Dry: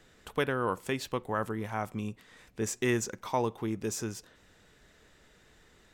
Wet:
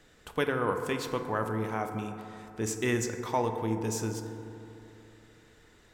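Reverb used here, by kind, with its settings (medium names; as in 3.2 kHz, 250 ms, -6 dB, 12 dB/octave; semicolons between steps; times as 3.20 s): FDN reverb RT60 3 s, high-frequency decay 0.3×, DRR 5.5 dB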